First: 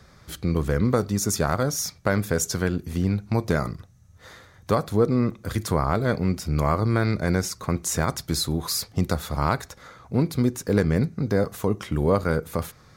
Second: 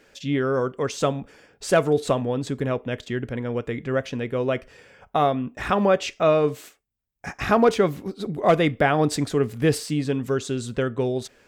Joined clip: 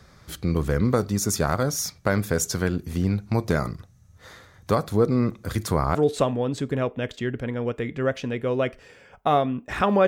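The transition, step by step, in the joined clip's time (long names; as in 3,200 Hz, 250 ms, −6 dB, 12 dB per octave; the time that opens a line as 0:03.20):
first
0:05.95: continue with second from 0:01.84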